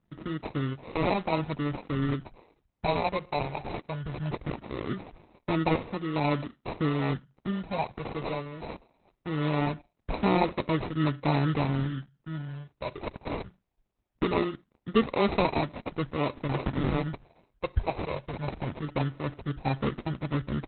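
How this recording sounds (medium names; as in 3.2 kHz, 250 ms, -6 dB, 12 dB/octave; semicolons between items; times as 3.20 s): phasing stages 4, 0.21 Hz, lowest notch 230–3300 Hz; aliases and images of a low sample rate 1.6 kHz, jitter 0%; Opus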